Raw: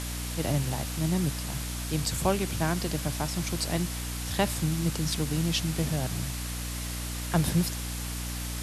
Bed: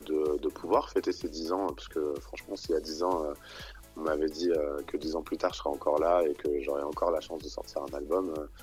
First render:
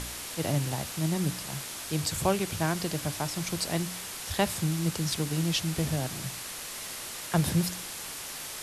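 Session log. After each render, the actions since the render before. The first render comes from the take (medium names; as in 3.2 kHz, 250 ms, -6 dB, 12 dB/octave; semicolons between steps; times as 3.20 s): de-hum 60 Hz, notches 5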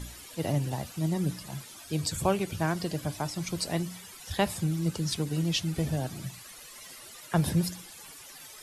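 noise reduction 14 dB, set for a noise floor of -39 dBFS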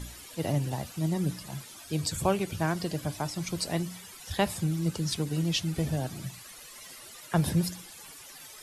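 no audible change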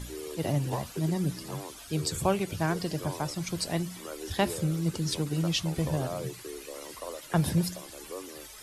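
add bed -11.5 dB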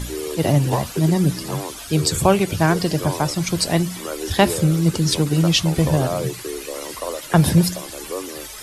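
trim +11.5 dB; peak limiter -3 dBFS, peak gain reduction 1.5 dB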